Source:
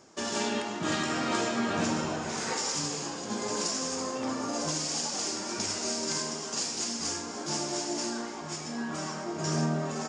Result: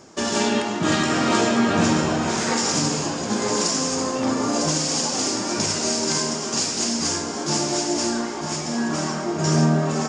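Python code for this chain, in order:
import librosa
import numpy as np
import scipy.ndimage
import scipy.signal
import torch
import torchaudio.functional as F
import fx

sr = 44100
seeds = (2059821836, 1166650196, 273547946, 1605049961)

p1 = fx.low_shelf(x, sr, hz=330.0, db=4.0)
p2 = p1 + fx.echo_single(p1, sr, ms=952, db=-9.5, dry=0)
y = F.gain(torch.from_numpy(p2), 8.0).numpy()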